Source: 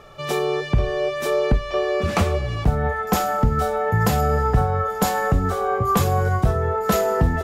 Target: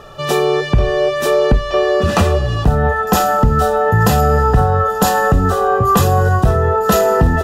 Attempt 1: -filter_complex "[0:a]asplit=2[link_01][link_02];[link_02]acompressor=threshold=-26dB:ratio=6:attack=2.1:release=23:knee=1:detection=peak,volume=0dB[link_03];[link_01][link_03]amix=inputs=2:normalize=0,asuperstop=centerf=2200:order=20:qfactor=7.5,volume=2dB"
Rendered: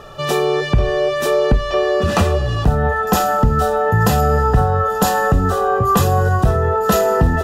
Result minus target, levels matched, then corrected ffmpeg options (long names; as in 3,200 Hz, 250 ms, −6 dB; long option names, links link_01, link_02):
downward compressor: peak gain reduction +6 dB
-filter_complex "[0:a]asplit=2[link_01][link_02];[link_02]acompressor=threshold=-18.5dB:ratio=6:attack=2.1:release=23:knee=1:detection=peak,volume=0dB[link_03];[link_01][link_03]amix=inputs=2:normalize=0,asuperstop=centerf=2200:order=20:qfactor=7.5,volume=2dB"